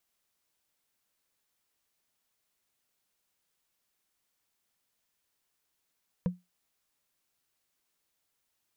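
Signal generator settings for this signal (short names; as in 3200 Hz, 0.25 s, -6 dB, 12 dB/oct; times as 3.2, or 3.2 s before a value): wood hit, lowest mode 179 Hz, decay 0.20 s, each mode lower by 8 dB, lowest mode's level -21.5 dB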